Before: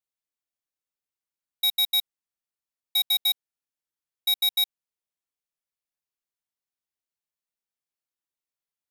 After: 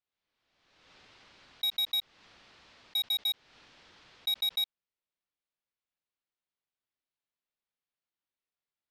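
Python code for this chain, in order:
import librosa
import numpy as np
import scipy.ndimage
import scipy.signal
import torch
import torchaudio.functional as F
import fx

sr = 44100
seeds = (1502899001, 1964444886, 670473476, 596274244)

y = scipy.signal.sosfilt(scipy.signal.butter(4, 4400.0, 'lowpass', fs=sr, output='sos'), x)
y = 10.0 ** (-26.5 / 20.0) * np.tanh(y / 10.0 ** (-26.5 / 20.0))
y = fx.pre_swell(y, sr, db_per_s=43.0)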